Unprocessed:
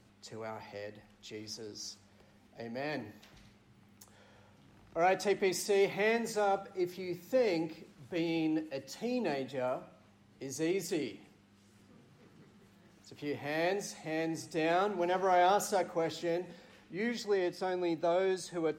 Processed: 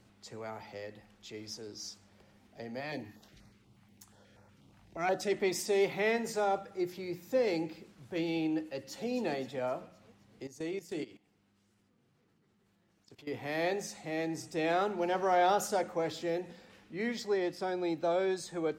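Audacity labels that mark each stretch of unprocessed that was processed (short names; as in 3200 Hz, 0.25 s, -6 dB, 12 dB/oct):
2.800000	5.320000	stepped notch 8.3 Hz 390–3100 Hz
8.640000	9.080000	echo throw 0.26 s, feedback 55%, level -10.5 dB
10.470000	13.320000	level quantiser steps of 18 dB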